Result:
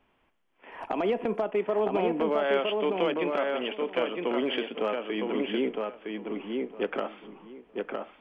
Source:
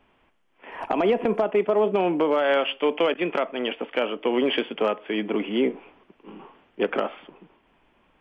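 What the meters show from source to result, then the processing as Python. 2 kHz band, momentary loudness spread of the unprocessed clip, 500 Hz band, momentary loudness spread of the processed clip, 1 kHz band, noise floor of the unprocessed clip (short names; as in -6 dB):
-4.5 dB, 8 LU, -4.0 dB, 11 LU, -4.5 dB, -64 dBFS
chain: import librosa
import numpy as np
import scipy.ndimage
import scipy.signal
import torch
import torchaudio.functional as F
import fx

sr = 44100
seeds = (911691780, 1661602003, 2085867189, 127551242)

y = fx.echo_filtered(x, sr, ms=961, feedback_pct=18, hz=3000.0, wet_db=-3.0)
y = y * librosa.db_to_amplitude(-6.0)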